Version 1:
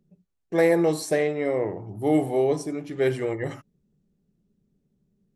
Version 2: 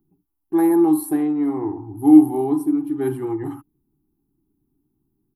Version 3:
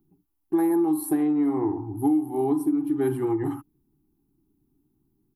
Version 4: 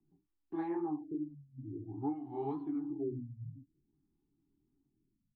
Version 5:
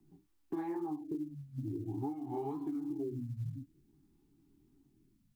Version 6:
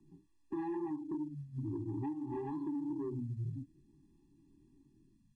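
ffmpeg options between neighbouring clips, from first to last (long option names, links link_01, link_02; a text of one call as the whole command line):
ffmpeg -i in.wav -af "firequalizer=gain_entry='entry(130,0);entry(190,-13);entry(300,14);entry(550,-28);entry(800,6);entry(1400,-3);entry(2000,-16);entry(3100,-12);entry(6300,-22);entry(11000,11)':delay=0.05:min_phase=1,volume=1dB" out.wav
ffmpeg -i in.wav -af "acompressor=threshold=-20dB:ratio=16,volume=1dB" out.wav
ffmpeg -i in.wav -filter_complex "[0:a]acrossover=split=220|530|2200[link_01][link_02][link_03][link_04];[link_02]alimiter=level_in=5dB:limit=-24dB:level=0:latency=1:release=310,volume=-5dB[link_05];[link_01][link_05][link_03][link_04]amix=inputs=4:normalize=0,flanger=delay=17.5:depth=7.9:speed=2.3,afftfilt=real='re*lt(b*sr/1024,230*pow(5400/230,0.5+0.5*sin(2*PI*0.51*pts/sr)))':imag='im*lt(b*sr/1024,230*pow(5400/230,0.5+0.5*sin(2*PI*0.51*pts/sr)))':win_size=1024:overlap=0.75,volume=-6.5dB" out.wav
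ffmpeg -i in.wav -af "acompressor=threshold=-45dB:ratio=10,acrusher=bits=9:mode=log:mix=0:aa=0.000001,volume=10dB" out.wav
ffmpeg -i in.wav -af "asoftclip=type=tanh:threshold=-34.5dB,aresample=22050,aresample=44100,afftfilt=real='re*eq(mod(floor(b*sr/1024/400),2),0)':imag='im*eq(mod(floor(b*sr/1024/400),2),0)':win_size=1024:overlap=0.75,volume=2.5dB" out.wav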